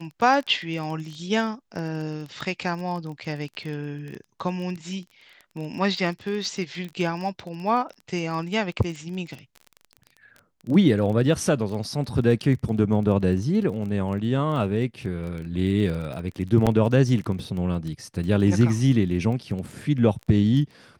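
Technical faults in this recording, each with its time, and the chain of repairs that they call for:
surface crackle 21 per second −31 dBFS
0:16.66–0:16.67: drop-out 7.2 ms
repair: click removal
repair the gap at 0:16.66, 7.2 ms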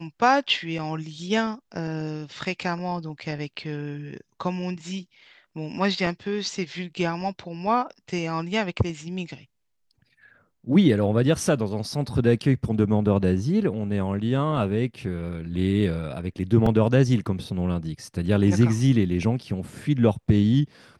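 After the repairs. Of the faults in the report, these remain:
none of them is left

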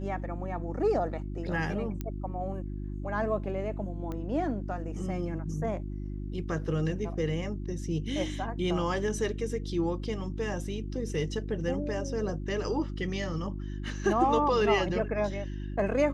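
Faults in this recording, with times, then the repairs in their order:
mains hum 50 Hz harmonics 7 −36 dBFS
0:02.01: click −21 dBFS
0:04.12: click −25 dBFS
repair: click removal
hum removal 50 Hz, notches 7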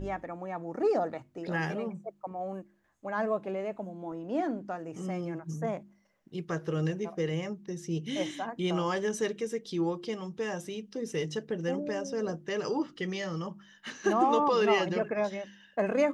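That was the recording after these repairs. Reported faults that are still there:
0:02.01: click

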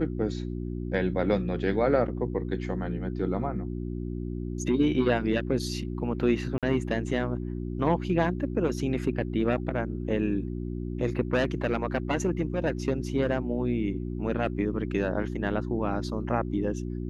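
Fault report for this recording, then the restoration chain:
mains hum 60 Hz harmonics 6 −33 dBFS
0:06.58–0:06.63: drop-out 47 ms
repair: hum removal 60 Hz, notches 6
repair the gap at 0:06.58, 47 ms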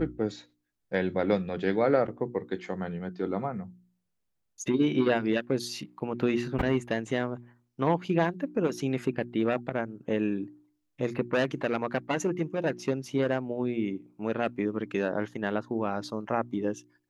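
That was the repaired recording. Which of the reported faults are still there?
none of them is left

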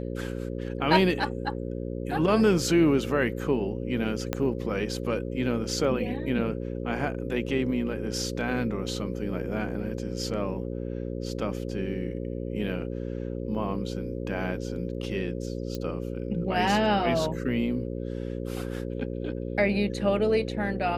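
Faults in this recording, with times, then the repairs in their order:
mains buzz 60 Hz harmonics 9 −33 dBFS
0:04.33: click −12 dBFS
0:15.75: click −20 dBFS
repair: click removal
hum removal 60 Hz, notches 9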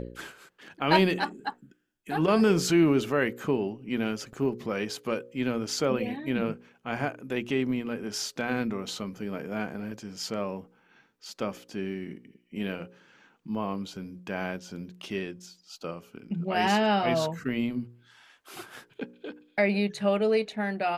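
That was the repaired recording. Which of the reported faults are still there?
0:04.33: click

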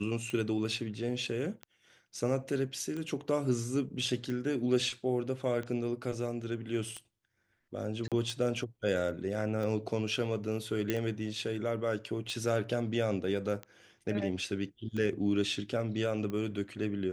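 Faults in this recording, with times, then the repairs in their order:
scratch tick 45 rpm −26 dBFS
0:08.08–0:08.12: drop-out 37 ms
0:10.90: click −16 dBFS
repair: click removal
repair the gap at 0:08.08, 37 ms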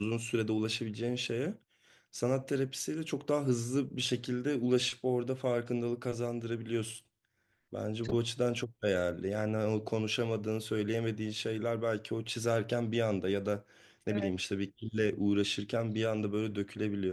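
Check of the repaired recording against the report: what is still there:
none of them is left

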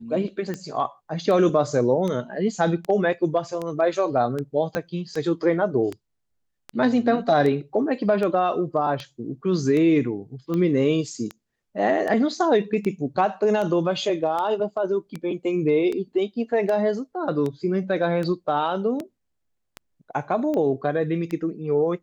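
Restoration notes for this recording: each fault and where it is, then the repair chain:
scratch tick 78 rpm −17 dBFS
0:04.75: click −12 dBFS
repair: click removal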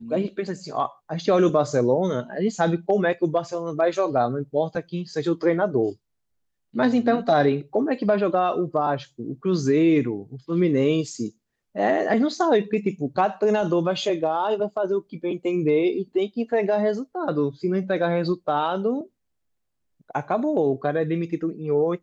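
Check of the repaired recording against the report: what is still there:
0:04.75: click

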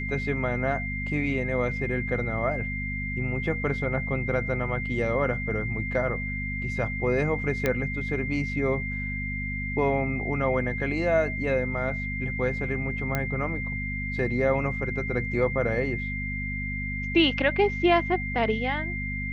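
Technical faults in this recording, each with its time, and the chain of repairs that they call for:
mains hum 50 Hz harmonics 5 −33 dBFS
whistle 2,100 Hz −32 dBFS
0:07.66: click −11 dBFS
0:13.15: click −12 dBFS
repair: click removal
hum removal 50 Hz, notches 5
notch filter 2,100 Hz, Q 30

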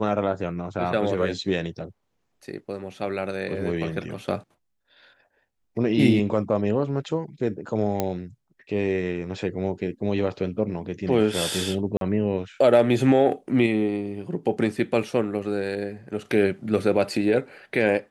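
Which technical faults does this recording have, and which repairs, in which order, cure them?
0:08.00: click −9 dBFS
0:11.97–0:12.01: drop-out 42 ms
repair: click removal
repair the gap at 0:11.97, 42 ms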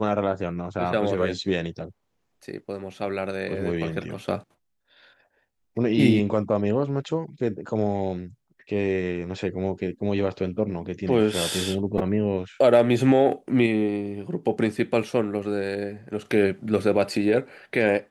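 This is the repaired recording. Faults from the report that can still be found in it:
none of them is left

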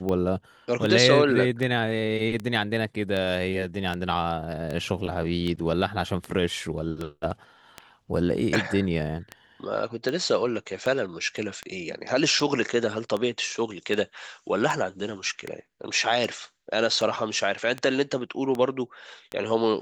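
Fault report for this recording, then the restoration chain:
scratch tick 78 rpm −17 dBFS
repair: click removal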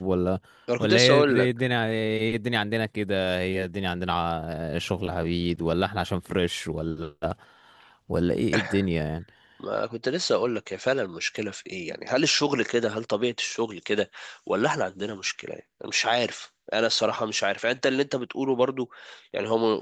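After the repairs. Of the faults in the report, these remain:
none of them is left

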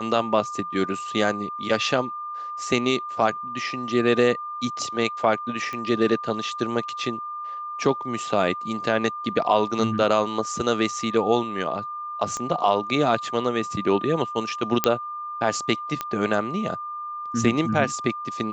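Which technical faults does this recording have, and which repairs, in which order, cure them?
whistle 1,200 Hz −30 dBFS
0:05.73: click −19 dBFS
0:12.37: click −18 dBFS
0:14.84: click −2 dBFS
0:16.01: click −12 dBFS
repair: click removal
notch filter 1,200 Hz, Q 30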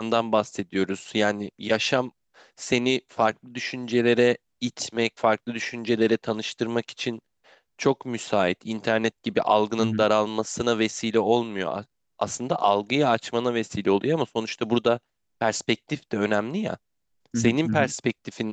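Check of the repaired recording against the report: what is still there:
0:12.37: click

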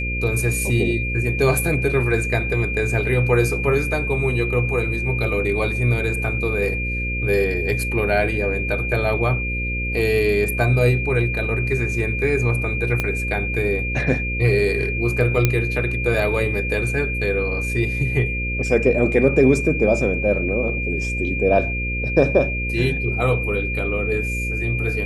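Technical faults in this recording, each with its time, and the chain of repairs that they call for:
mains buzz 60 Hz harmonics 9 −26 dBFS
whistle 2,400 Hz −25 dBFS
0:13.00: click −8 dBFS
0:15.45: click −3 dBFS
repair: click removal
hum removal 60 Hz, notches 9
notch filter 2,400 Hz, Q 30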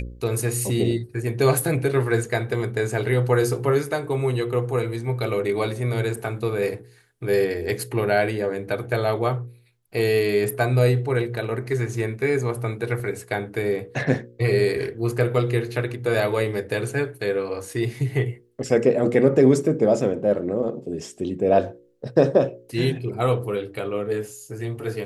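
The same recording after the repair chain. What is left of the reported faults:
0:13.00: click

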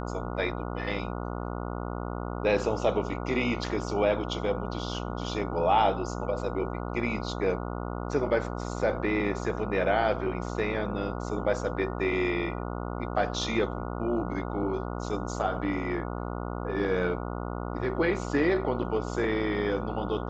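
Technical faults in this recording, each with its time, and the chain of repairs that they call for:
mains buzz 60 Hz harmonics 24 −34 dBFS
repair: hum removal 60 Hz, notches 24

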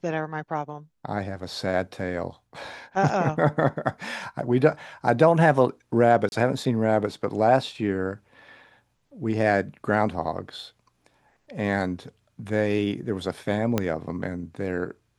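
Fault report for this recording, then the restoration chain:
0:06.29–0:06.32: drop-out 31 ms
0:13.78: click −9 dBFS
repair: click removal
repair the gap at 0:06.29, 31 ms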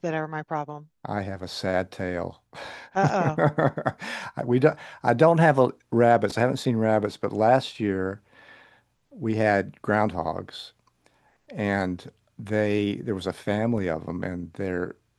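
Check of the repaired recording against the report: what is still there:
0:13.78: click

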